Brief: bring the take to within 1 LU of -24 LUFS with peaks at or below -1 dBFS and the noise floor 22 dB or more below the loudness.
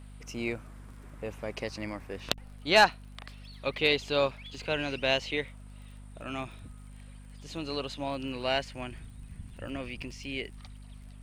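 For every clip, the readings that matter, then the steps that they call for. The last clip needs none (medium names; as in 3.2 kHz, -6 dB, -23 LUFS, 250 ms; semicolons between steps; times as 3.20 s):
tick rate 32 per s; hum 50 Hz; highest harmonic 250 Hz; hum level -45 dBFS; loudness -31.0 LUFS; peak level -9.5 dBFS; loudness target -24.0 LUFS
-> de-click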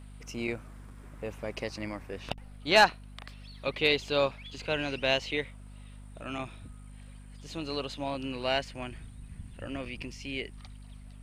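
tick rate 0.089 per s; hum 50 Hz; highest harmonic 250 Hz; hum level -45 dBFS
-> de-hum 50 Hz, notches 5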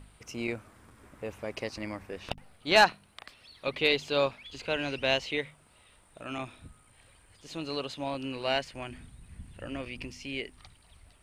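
hum not found; loudness -31.0 LUFS; peak level -9.5 dBFS; loudness target -24.0 LUFS
-> trim +7 dB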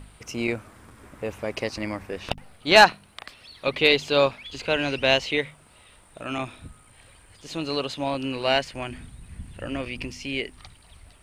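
loudness -24.0 LUFS; peak level -2.5 dBFS; noise floor -54 dBFS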